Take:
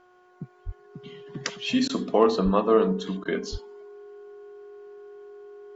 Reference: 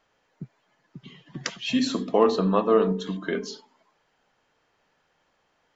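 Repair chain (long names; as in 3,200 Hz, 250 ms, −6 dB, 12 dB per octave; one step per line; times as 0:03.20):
hum removal 363.2 Hz, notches 4
notch filter 410 Hz, Q 30
high-pass at the plosives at 0:00.65/0:02.44/0:03.51
repair the gap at 0:01.88/0:03.24, 12 ms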